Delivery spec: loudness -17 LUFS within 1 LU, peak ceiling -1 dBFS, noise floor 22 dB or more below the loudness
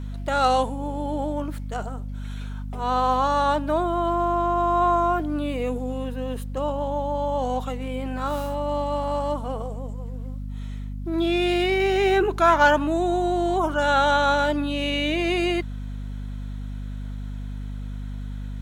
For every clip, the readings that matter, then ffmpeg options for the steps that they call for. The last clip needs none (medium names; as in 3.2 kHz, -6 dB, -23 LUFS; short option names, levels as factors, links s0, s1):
hum 50 Hz; highest harmonic 250 Hz; hum level -29 dBFS; loudness -23.5 LUFS; peak level -5.5 dBFS; loudness target -17.0 LUFS
-> -af "bandreject=f=50:t=h:w=4,bandreject=f=100:t=h:w=4,bandreject=f=150:t=h:w=4,bandreject=f=200:t=h:w=4,bandreject=f=250:t=h:w=4"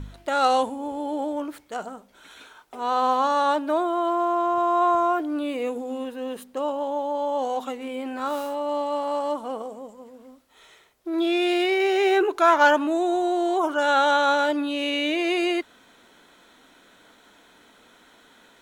hum not found; loudness -23.5 LUFS; peak level -6.0 dBFS; loudness target -17.0 LUFS
-> -af "volume=2.11,alimiter=limit=0.891:level=0:latency=1"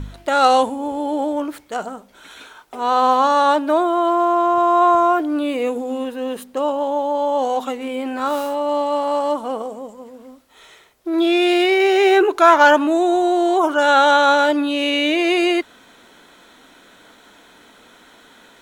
loudness -17.0 LUFS; peak level -1.0 dBFS; noise floor -49 dBFS